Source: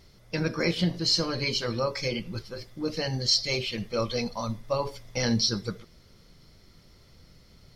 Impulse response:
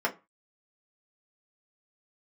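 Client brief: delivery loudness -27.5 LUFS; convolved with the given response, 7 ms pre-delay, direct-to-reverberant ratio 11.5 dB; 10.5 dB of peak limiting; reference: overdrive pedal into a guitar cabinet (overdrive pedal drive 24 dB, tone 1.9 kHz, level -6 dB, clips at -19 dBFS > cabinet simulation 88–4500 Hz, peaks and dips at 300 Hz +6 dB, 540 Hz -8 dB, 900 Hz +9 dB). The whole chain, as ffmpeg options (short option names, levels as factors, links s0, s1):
-filter_complex "[0:a]alimiter=limit=0.0891:level=0:latency=1,asplit=2[s0][s1];[1:a]atrim=start_sample=2205,adelay=7[s2];[s1][s2]afir=irnorm=-1:irlink=0,volume=0.0841[s3];[s0][s3]amix=inputs=2:normalize=0,asplit=2[s4][s5];[s5]highpass=f=720:p=1,volume=15.8,asoftclip=type=tanh:threshold=0.112[s6];[s4][s6]amix=inputs=2:normalize=0,lowpass=f=1900:p=1,volume=0.501,highpass=88,equalizer=f=300:t=q:w=4:g=6,equalizer=f=540:t=q:w=4:g=-8,equalizer=f=900:t=q:w=4:g=9,lowpass=f=4500:w=0.5412,lowpass=f=4500:w=1.3066,volume=1.12"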